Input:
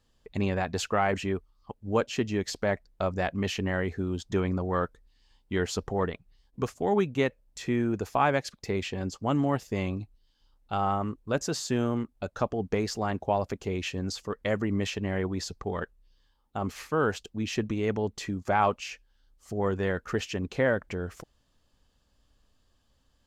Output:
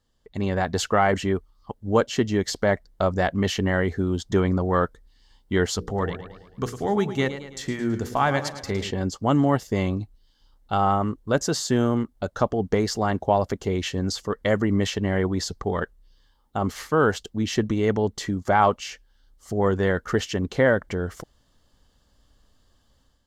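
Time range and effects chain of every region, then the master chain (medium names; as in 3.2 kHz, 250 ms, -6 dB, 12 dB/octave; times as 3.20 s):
5.76–8.91 s: peaking EQ 550 Hz -5 dB 2.9 oct + hum notches 60/120/180/240/300/360/420/480/540 Hz + modulated delay 109 ms, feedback 52%, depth 93 cents, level -11.5 dB
whole clip: band-stop 2.5 kHz, Q 5.5; level rider gain up to 9 dB; trim -2.5 dB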